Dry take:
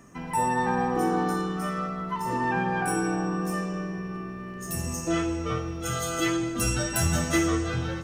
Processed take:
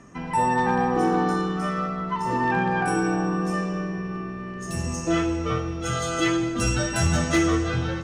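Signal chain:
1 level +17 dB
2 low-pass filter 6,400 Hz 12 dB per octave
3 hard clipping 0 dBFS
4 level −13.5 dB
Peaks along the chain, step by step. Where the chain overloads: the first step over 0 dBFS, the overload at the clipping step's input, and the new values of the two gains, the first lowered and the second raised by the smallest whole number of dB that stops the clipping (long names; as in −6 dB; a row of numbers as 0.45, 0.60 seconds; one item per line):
+6.0, +5.5, 0.0, −13.5 dBFS
step 1, 5.5 dB
step 1 +11 dB, step 4 −7.5 dB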